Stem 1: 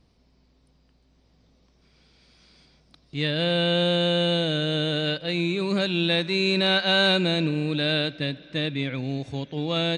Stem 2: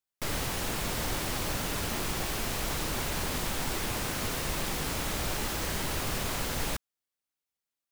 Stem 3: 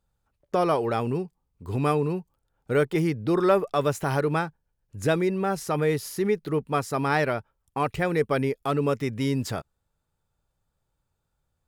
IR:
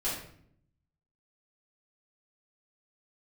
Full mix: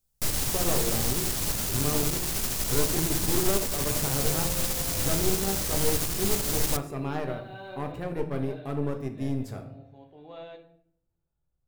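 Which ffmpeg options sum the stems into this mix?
-filter_complex "[0:a]bandpass=f=780:t=q:w=1.3:csg=0,adelay=600,volume=-16dB,asplit=2[a][b];[b]volume=-8.5dB[c];[1:a]bass=f=250:g=3,treble=f=4k:g=13,asoftclip=type=hard:threshold=-27.5dB,volume=-1dB,asplit=2[d][e];[e]volume=-20.5dB[f];[2:a]equalizer=f=3.2k:w=0.38:g=-7,aeval=exprs='clip(val(0),-1,0.0596)':c=same,volume=-12.5dB,asplit=3[g][h][i];[h]volume=-7.5dB[j];[i]apad=whole_len=466383[k];[a][k]sidechaincompress=threshold=-53dB:ratio=8:attack=16:release=630[l];[3:a]atrim=start_sample=2205[m];[c][f][j]amix=inputs=3:normalize=0[n];[n][m]afir=irnorm=-1:irlink=0[o];[l][d][g][o]amix=inputs=4:normalize=0,lowshelf=f=450:g=4.5,aeval=exprs='0.2*(cos(1*acos(clip(val(0)/0.2,-1,1)))-cos(1*PI/2))+0.0282*(cos(4*acos(clip(val(0)/0.2,-1,1)))-cos(4*PI/2))':c=same"

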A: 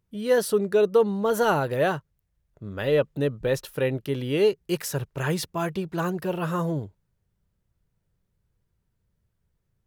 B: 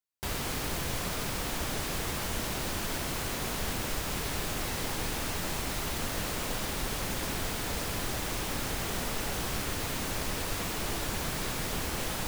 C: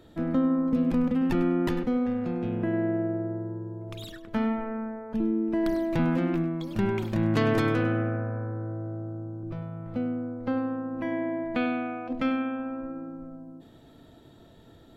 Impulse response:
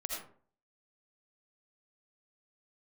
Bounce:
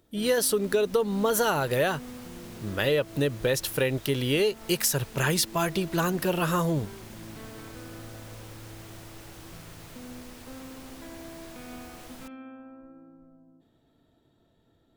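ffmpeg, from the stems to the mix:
-filter_complex "[0:a]highshelf=f=2.3k:g=11,volume=2dB[a];[1:a]volume=-14dB[b];[2:a]alimiter=limit=-22dB:level=0:latency=1:release=146,volume=-13.5dB[c];[a][b][c]amix=inputs=3:normalize=0,acompressor=threshold=-21dB:ratio=6"

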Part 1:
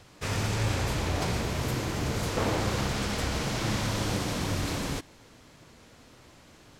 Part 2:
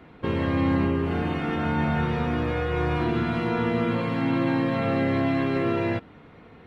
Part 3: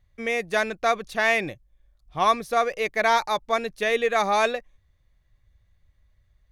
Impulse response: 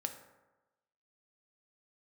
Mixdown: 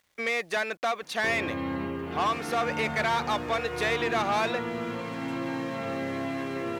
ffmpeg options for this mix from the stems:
-filter_complex "[0:a]acompressor=threshold=-34dB:ratio=3,adelay=2100,volume=-12.5dB[a];[1:a]adelay=1000,volume=-5.5dB[b];[2:a]acompressor=threshold=-29dB:ratio=3,asplit=2[c][d];[d]highpass=f=720:p=1,volume=17dB,asoftclip=type=tanh:threshold=-17dB[e];[c][e]amix=inputs=2:normalize=0,lowpass=f=4.4k:p=1,volume=-6dB,volume=-1.5dB[f];[a][b][f]amix=inputs=3:normalize=0,highpass=52,lowshelf=f=190:g=-10.5,acrusher=bits=10:mix=0:aa=0.000001"

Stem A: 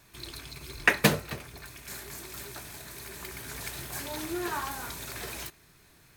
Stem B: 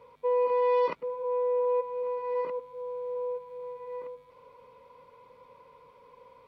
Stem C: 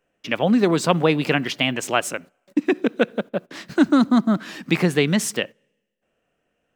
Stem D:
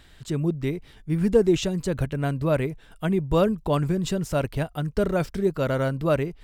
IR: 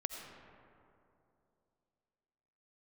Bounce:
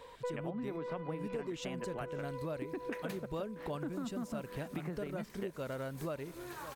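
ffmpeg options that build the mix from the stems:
-filter_complex "[0:a]adelay=2050,volume=-13.5dB[a];[1:a]highpass=320,asoftclip=type=tanh:threshold=-25dB,volume=1.5dB,asplit=2[b][c];[c]volume=-6.5dB[d];[2:a]lowpass=1.7k,acompressor=threshold=-30dB:ratio=1.5,adelay=50,volume=-6.5dB[e];[3:a]lowshelf=f=110:g=-10,volume=-6dB,asplit=3[f][g][h];[g]volume=-23dB[i];[h]apad=whole_len=285580[j];[b][j]sidechaincompress=threshold=-40dB:ratio=8:attack=16:release=980[k];[d][i]amix=inputs=2:normalize=0,aecho=0:1:569:1[l];[a][k][e][f][l]amix=inputs=5:normalize=0,acompressor=threshold=-37dB:ratio=6"

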